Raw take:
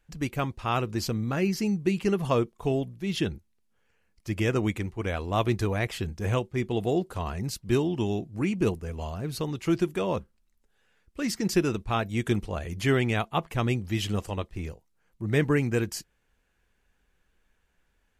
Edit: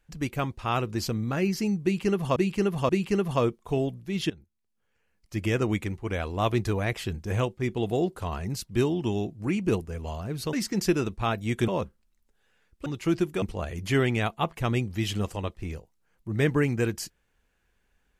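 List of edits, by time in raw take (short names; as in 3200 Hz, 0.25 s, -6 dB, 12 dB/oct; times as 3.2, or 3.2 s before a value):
1.83–2.36 loop, 3 plays
3.24–4.33 fade in, from -19 dB
9.47–10.03 swap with 11.21–12.36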